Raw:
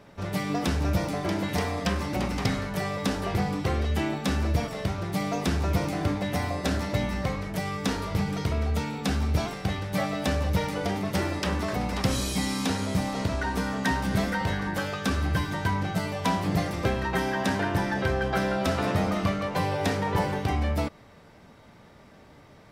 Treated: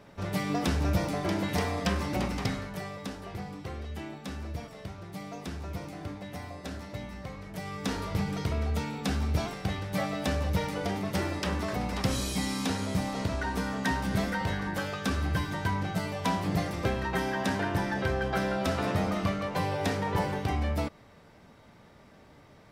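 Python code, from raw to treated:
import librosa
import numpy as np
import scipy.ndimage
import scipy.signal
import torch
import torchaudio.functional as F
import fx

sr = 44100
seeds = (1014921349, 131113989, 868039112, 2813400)

y = fx.gain(x, sr, db=fx.line((2.18, -1.5), (3.19, -12.0), (7.28, -12.0), (7.98, -3.0)))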